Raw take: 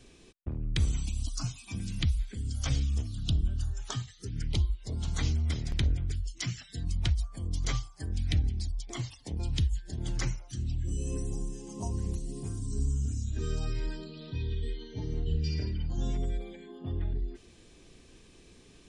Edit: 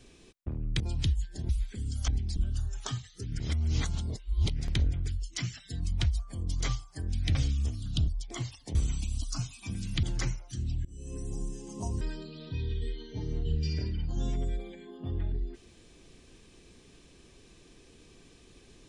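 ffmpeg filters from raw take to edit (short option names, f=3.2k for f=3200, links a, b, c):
-filter_complex "[0:a]asplit=13[a][b][c][d][e][f][g][h][i][j][k][l][m];[a]atrim=end=0.802[n];[b]atrim=start=9.338:end=10.032[o];[c]atrim=start=2.078:end=2.672[p];[d]atrim=start=8.388:end=8.672[q];[e]atrim=start=3.398:end=4.442[r];[f]atrim=start=4.438:end=5.632,asetpts=PTS-STARTPTS,areverse[s];[g]atrim=start=5.628:end=8.392[t];[h]atrim=start=2.668:end=3.402[u];[i]atrim=start=8.668:end=9.342[v];[j]atrim=start=0.798:end=2.082[w];[k]atrim=start=10.028:end=10.85,asetpts=PTS-STARTPTS,afade=t=out:st=0.818:d=0.004:c=hsin:silence=0.0668344[x];[l]atrim=start=10.85:end=12.012,asetpts=PTS-STARTPTS,afade=t=in:d=0.6:silence=0.0668344[y];[m]atrim=start=13.818[z];[n][o]acrossfade=d=0.004:c1=hsin:c2=hsin[aa];[aa][p]acrossfade=d=0.004:c1=hsin:c2=hsin[ab];[ab][q]acrossfade=d=0.004:c1=hsin:c2=hsin[ac];[ac][r]acrossfade=d=0.004:c1=hsin:c2=hsin[ad];[ad][s]acrossfade=d=0.004:c1=hsin:c2=hsin[ae];[ae][t]acrossfade=d=0.004:c1=hsin:c2=hsin[af];[af][u]acrossfade=d=0.004:c1=hsin:c2=hsin[ag];[ag][v]acrossfade=d=0.004:c1=hsin:c2=hsin[ah];[ah][w]acrossfade=d=0.004:c1=hsin:c2=hsin[ai];[x][y]concat=n=2:v=0:a=1[aj];[ai][aj]acrossfade=d=0.004:c1=hsin:c2=hsin[ak];[ak][z]acrossfade=d=0.004:c1=hsin:c2=hsin"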